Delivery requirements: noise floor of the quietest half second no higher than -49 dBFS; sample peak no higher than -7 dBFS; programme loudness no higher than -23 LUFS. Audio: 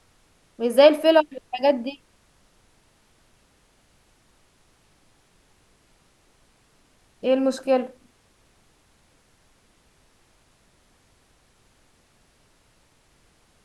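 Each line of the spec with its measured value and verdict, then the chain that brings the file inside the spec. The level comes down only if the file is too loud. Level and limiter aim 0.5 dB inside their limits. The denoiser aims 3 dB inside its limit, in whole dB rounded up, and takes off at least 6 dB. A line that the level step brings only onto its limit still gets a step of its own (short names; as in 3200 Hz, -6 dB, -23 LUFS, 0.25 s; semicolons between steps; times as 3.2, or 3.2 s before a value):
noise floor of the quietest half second -61 dBFS: OK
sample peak -4.0 dBFS: fail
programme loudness -20.5 LUFS: fail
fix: gain -3 dB; limiter -7.5 dBFS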